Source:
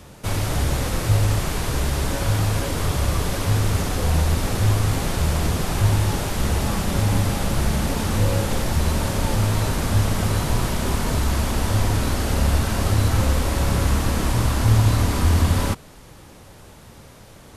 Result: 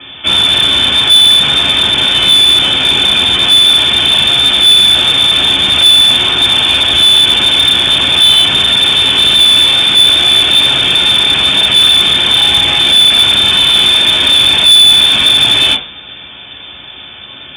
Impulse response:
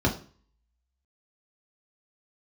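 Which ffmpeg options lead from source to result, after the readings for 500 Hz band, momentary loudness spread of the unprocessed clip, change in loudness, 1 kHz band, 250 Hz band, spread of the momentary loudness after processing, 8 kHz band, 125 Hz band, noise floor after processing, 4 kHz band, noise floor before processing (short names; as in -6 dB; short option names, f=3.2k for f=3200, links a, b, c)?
+3.5 dB, 4 LU, +17.0 dB, +7.5 dB, +1.0 dB, 4 LU, +9.5 dB, -8.5 dB, -31 dBFS, +30.5 dB, -45 dBFS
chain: -filter_complex "[0:a]lowpass=f=3.1k:t=q:w=0.5098,lowpass=f=3.1k:t=q:w=0.6013,lowpass=f=3.1k:t=q:w=0.9,lowpass=f=3.1k:t=q:w=2.563,afreqshift=-3600[a];[1:a]atrim=start_sample=2205[b];[a][b]afir=irnorm=-1:irlink=0,acontrast=84,volume=-1dB"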